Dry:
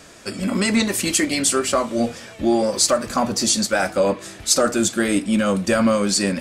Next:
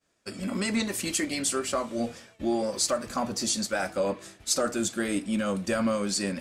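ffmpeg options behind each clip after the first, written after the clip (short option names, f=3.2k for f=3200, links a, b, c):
-af "agate=range=-33dB:threshold=-32dB:ratio=3:detection=peak,volume=-9dB"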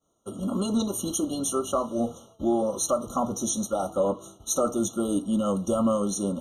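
-af "equalizer=f=3.4k:w=3.2:g=-8.5,afftfilt=real='re*eq(mod(floor(b*sr/1024/1400),2),0)':imag='im*eq(mod(floor(b*sr/1024/1400),2),0)':win_size=1024:overlap=0.75,volume=3dB"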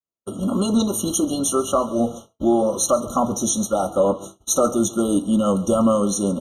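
-af "aecho=1:1:137:0.112,agate=range=-33dB:threshold=-38dB:ratio=3:detection=peak,volume=6.5dB"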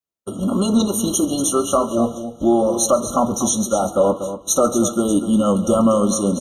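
-af "aecho=1:1:240:0.282,volume=2dB"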